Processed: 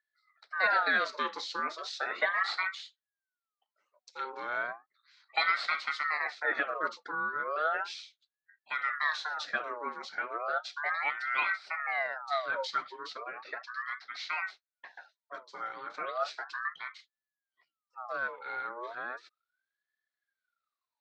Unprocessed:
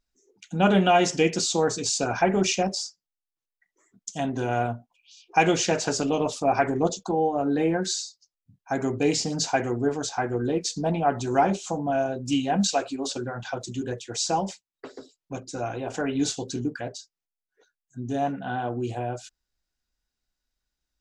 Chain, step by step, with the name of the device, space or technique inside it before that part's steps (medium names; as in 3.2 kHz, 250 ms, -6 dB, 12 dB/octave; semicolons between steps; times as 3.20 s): voice changer toy (ring modulator with a swept carrier 1.2 kHz, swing 45%, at 0.35 Hz; cabinet simulation 530–4300 Hz, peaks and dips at 640 Hz +4 dB, 950 Hz -6 dB, 1.4 kHz +6 dB, 2 kHz +3 dB, 2.9 kHz -7 dB, 4.1 kHz +7 dB); 13.33–14.37 s: Chebyshev band-pass 210–6100 Hz, order 3; trim -6.5 dB